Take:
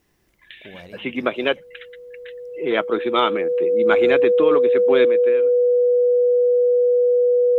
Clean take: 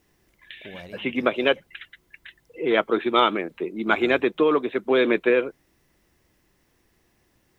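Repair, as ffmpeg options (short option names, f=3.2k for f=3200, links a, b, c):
-af "bandreject=f=490:w=30,asetnsamples=n=441:p=0,asendcmd='5.05 volume volume 10.5dB',volume=0dB"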